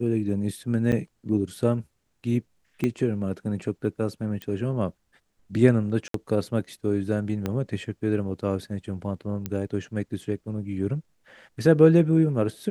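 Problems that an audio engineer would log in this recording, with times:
0.92–0.93 s: dropout 7.4 ms
2.84 s: pop -14 dBFS
4.42 s: pop -20 dBFS
6.08–6.14 s: dropout 63 ms
7.46 s: pop -14 dBFS
9.46 s: pop -15 dBFS

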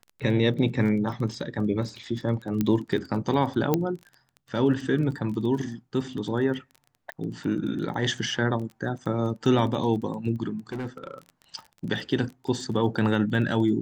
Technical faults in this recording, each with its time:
crackle 18 per s -34 dBFS
2.61 s: pop -12 dBFS
3.74 s: pop -9 dBFS
7.12 s: pop -22 dBFS
10.72–11.18 s: clipped -28.5 dBFS

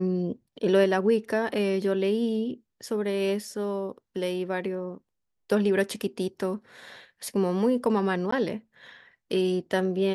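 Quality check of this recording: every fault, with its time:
8.31–8.32 s: dropout 14 ms

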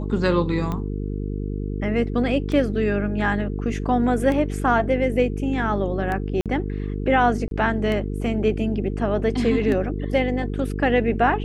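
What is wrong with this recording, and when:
buzz 50 Hz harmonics 9 -27 dBFS
tick 33 1/3 rpm -16 dBFS
6.41–6.46 s: dropout 47 ms
7.48–7.51 s: dropout 32 ms

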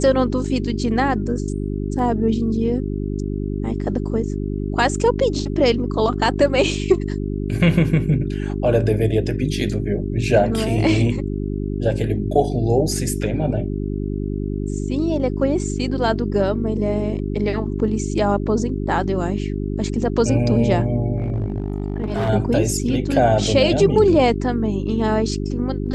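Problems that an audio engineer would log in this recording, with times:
hum 50 Hz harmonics 8 -24 dBFS
21.18–22.30 s: clipped -17.5 dBFS

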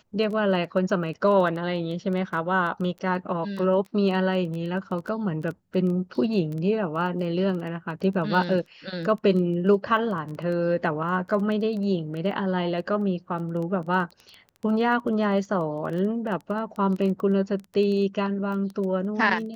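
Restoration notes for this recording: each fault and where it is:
crackle 12 per s -31 dBFS

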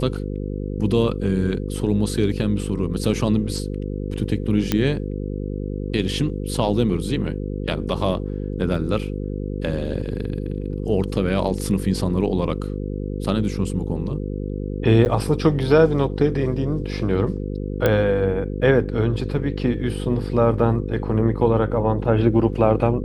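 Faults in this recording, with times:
buzz 50 Hz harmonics 10 -27 dBFS
4.72 s: pop -5 dBFS
8.75 s: dropout 3.7 ms
15.05–15.06 s: dropout 9.3 ms
17.86 s: pop -6 dBFS

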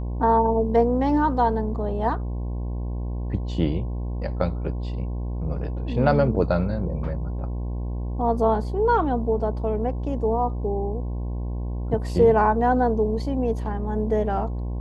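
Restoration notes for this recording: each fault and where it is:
buzz 60 Hz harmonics 18 -28 dBFS

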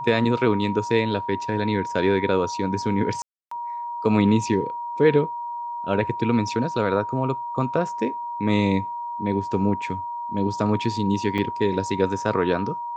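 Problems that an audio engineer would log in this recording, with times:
whine 950 Hz -28 dBFS
3.22–3.51 s: dropout 294 ms
11.38 s: dropout 3.9 ms

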